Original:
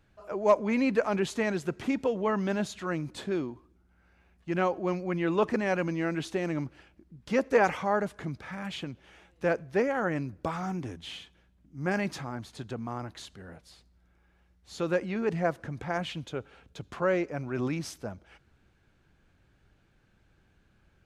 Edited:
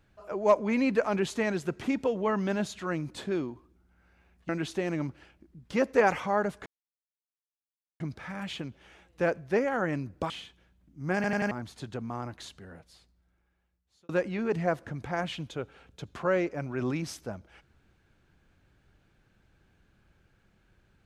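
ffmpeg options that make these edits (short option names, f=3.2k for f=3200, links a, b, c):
-filter_complex "[0:a]asplit=9[a][b][c][d][e][f][g][h][i];[a]atrim=end=4.492[j];[b]atrim=start=6.058:end=8.23,asetpts=PTS-STARTPTS,afade=t=out:st=2.168:d=0.004:c=hsin,apad=pad_dur=1.34[k];[c]atrim=start=8.23:end=10.532,asetpts=PTS-STARTPTS,afade=t=in:d=0.004:c=hsin[l];[d]atrim=start=11.068:end=12.012[m];[e]atrim=start=11.918:end=12.012[n];[f]atrim=start=11.918:end=12.012[o];[g]atrim=start=11.918:end=12.012[p];[h]atrim=start=12.278:end=14.86,asetpts=PTS-STARTPTS,afade=t=out:st=0.952:d=1.63[q];[i]atrim=start=14.86,asetpts=PTS-STARTPTS,afade=t=in:d=0.004:c=hsin[r];[k][l]concat=n=2:v=0:a=1[s];[j][s]acrossfade=d=0.004:c1=hsin:c2=hsin[t];[t][m]acrossfade=d=0.004:c1=hsin:c2=hsin[u];[u][n]acrossfade=d=0.004:c1=hsin:c2=hsin[v];[v][o]acrossfade=d=0.004:c1=hsin:c2=hsin[w];[w][p]acrossfade=d=0.004:c1=hsin:c2=hsin[x];[q][r]concat=n=2:v=0:a=1[y];[x][y]acrossfade=d=0.004:c1=hsin:c2=hsin"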